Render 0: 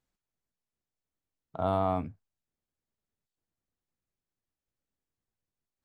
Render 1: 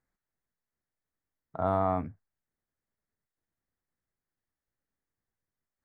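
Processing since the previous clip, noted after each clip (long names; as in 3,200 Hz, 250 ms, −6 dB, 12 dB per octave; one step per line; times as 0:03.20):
high shelf with overshoot 2,300 Hz −6 dB, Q 3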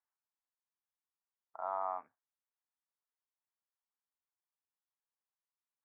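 four-pole ladder band-pass 1,100 Hz, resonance 50%
level +1.5 dB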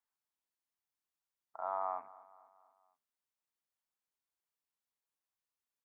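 repeating echo 239 ms, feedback 51%, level −19.5 dB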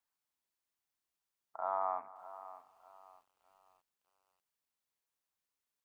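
feedback echo at a low word length 606 ms, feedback 35%, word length 11 bits, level −15 dB
level +2 dB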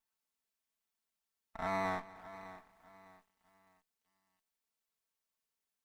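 lower of the sound and its delayed copy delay 4.5 ms
level +1 dB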